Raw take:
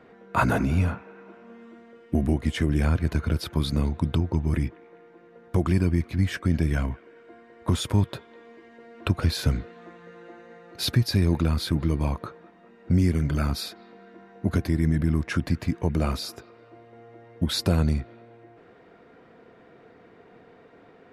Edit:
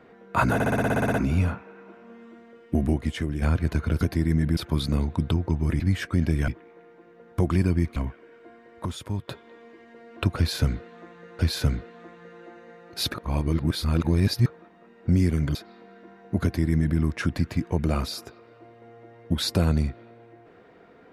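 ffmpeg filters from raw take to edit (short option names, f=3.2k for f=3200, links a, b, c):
-filter_complex "[0:a]asplit=23[a][b][c][d][e][f][g][h][i][j][k][l][m][n][o][p][q][r][s][t][u][v][w];[a]atrim=end=0.602[x];[b]atrim=start=0.538:end=0.602[y];[c]atrim=start=0.538:end=0.602[z];[d]atrim=start=0.538:end=0.602[aa];[e]atrim=start=0.538:end=0.602[ab];[f]atrim=start=0.538:end=0.602[ac];[g]atrim=start=0.538:end=0.602[ad];[h]atrim=start=0.538:end=0.602[ae];[i]atrim=start=0.538:end=0.602[af];[j]atrim=start=0.538:end=0.602[ag];[k]atrim=start=0.538:end=2.82,asetpts=PTS-STARTPTS,afade=t=out:st=1.762:d=0.52:silence=0.398107[ah];[l]atrim=start=2.82:end=3.412,asetpts=PTS-STARTPTS,afade=t=in:d=0.004:c=hsin:silence=0.398107[ai];[m]atrim=start=14.538:end=15.102[aj];[n]atrim=start=3.408:end=4.642[ak];[o]atrim=start=6.118:end=6.802[al];[p]atrim=start=4.638:end=6.122[am];[q]atrim=start=6.798:end=7.692[an];[r]atrim=start=7.688:end=8.122,asetpts=PTS-STARTPTS,volume=-8.5dB[ao];[s]atrim=start=8.118:end=10.232[ap];[t]atrim=start=9.208:end=10.962[aq];[u]atrim=start=10.958:end=12.282,asetpts=PTS-STARTPTS,areverse[ar];[v]atrim=start=12.278:end=13.372[as];[w]atrim=start=13.658[at];[x][y]acrossfade=d=0.004:c1=hsin:c2=hsin[au];[au][z]acrossfade=d=0.004:c1=hsin:c2=hsin[av];[av][aa]acrossfade=d=0.004:c1=hsin:c2=hsin[aw];[aw][ab]acrossfade=d=0.004:c1=hsin:c2=hsin[ax];[ax][ac]acrossfade=d=0.004:c1=hsin:c2=hsin[ay];[ay][ad]acrossfade=d=0.004:c1=hsin:c2=hsin[az];[az][ae]acrossfade=d=0.004:c1=hsin:c2=hsin[ba];[ba][af]acrossfade=d=0.004:c1=hsin:c2=hsin[bb];[bb][ag]acrossfade=d=0.004:c1=hsin:c2=hsin[bc];[ah][ai]concat=n=2:v=0:a=1[bd];[bc][bd]acrossfade=d=0.004:c1=hsin:c2=hsin[be];[be][aj]acrossfade=d=0.004:c1=hsin:c2=hsin[bf];[bf][ak]acrossfade=d=0.004:c1=hsin:c2=hsin[bg];[bg][al]acrossfade=d=0.004:c1=hsin:c2=hsin[bh];[bh][am]acrossfade=d=0.004:c1=hsin:c2=hsin[bi];[bi][an]acrossfade=d=0.004:c1=hsin:c2=hsin[bj];[bj][ao]acrossfade=d=0.004:c1=hsin:c2=hsin[bk];[bk][ap]acrossfade=d=0.004:c1=hsin:c2=hsin[bl];[bl][aq]acrossfade=d=0.004:c1=hsin:c2=hsin[bm];[bm][ar]acrossfade=d=0.004:c1=hsin:c2=hsin[bn];[bn][as]acrossfade=d=0.004:c1=hsin:c2=hsin[bo];[bo][at]acrossfade=d=0.004:c1=hsin:c2=hsin"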